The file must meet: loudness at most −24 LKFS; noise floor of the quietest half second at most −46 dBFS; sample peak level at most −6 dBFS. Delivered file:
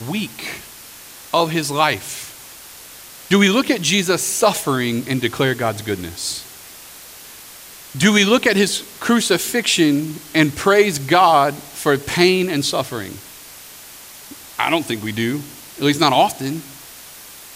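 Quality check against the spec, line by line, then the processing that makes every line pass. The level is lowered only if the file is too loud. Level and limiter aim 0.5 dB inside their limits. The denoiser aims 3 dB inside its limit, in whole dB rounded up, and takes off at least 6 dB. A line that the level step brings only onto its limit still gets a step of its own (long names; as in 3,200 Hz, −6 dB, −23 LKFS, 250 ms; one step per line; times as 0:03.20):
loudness −17.5 LKFS: out of spec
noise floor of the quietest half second −39 dBFS: out of spec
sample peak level −2.0 dBFS: out of spec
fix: broadband denoise 6 dB, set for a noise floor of −39 dBFS
level −7 dB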